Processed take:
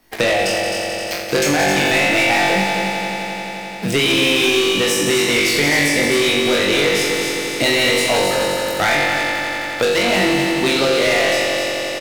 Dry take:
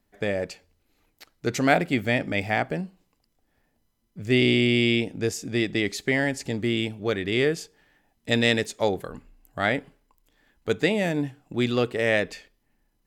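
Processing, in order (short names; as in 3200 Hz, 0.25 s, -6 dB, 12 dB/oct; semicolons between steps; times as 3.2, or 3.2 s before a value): low shelf 280 Hz -11.5 dB; notch 6700 Hz, Q 10; doubler 29 ms -5 dB; on a send: flutter echo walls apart 3.9 m, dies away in 0.57 s; on the sum: limiter -14 dBFS, peak gain reduction 8.5 dB; sample leveller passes 3; speed mistake 44.1 kHz file played as 48 kHz; multi-head echo 87 ms, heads all three, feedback 59%, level -10 dB; three-band squash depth 70%; gain +1.5 dB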